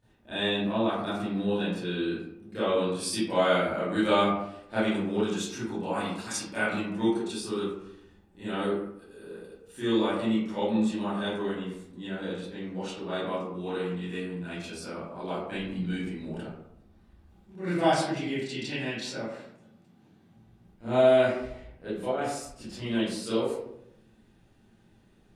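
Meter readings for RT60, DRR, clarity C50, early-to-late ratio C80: 0.80 s, -13.5 dB, -1.0 dB, 3.5 dB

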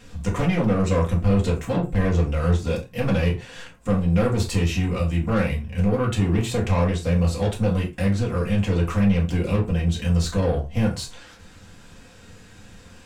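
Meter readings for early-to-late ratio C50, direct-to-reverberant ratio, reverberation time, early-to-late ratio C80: 10.5 dB, -3.5 dB, no single decay rate, 18.0 dB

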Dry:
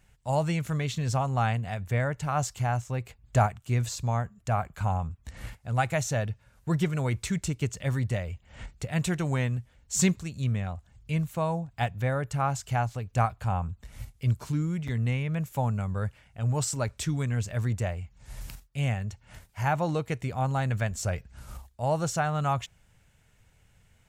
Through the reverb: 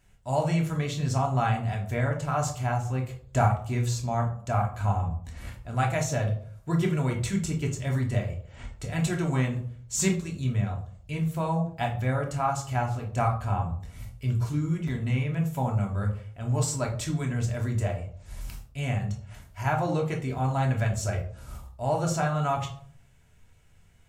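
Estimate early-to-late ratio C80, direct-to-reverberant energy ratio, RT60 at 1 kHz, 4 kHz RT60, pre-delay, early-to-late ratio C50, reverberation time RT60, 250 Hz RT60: 13.5 dB, -0.5 dB, 0.50 s, 0.30 s, 3 ms, 9.0 dB, 0.55 s, 0.60 s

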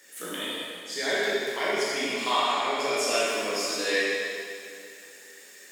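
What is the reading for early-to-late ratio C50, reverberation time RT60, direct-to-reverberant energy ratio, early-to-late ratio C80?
-3.5 dB, 2.4 s, -8.0 dB, -1.0 dB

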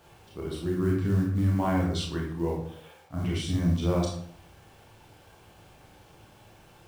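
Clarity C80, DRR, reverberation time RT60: 7.0 dB, -2.5 dB, 0.60 s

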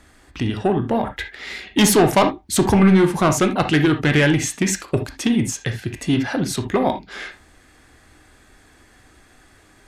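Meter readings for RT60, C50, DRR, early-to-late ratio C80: no single decay rate, 10.0 dB, 6.0 dB, 20.5 dB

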